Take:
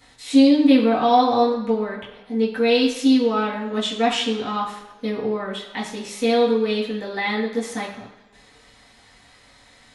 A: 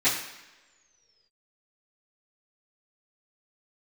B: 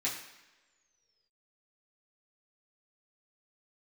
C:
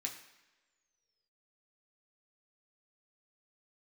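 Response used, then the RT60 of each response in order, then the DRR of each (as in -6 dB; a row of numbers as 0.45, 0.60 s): B; not exponential, not exponential, not exponential; -17.0, -8.0, -0.5 dB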